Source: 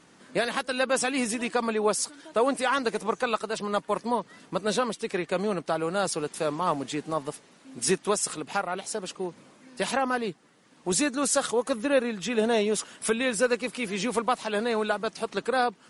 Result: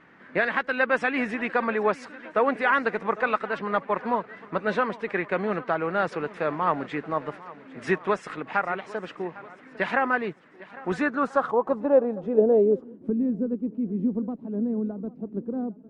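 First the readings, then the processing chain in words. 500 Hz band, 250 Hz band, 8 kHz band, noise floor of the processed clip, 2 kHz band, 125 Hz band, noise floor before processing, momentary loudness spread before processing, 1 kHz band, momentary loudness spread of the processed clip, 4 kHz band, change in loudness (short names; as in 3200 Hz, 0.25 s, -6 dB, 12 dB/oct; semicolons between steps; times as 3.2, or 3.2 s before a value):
+1.5 dB, +2.5 dB, under -25 dB, -50 dBFS, +4.0 dB, +1.5 dB, -57 dBFS, 8 LU, +1.5 dB, 12 LU, -11.0 dB, +1.5 dB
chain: swung echo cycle 1.338 s, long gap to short 1.5:1, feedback 33%, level -19 dB; low-pass sweep 1900 Hz -> 260 Hz, 10.84–13.18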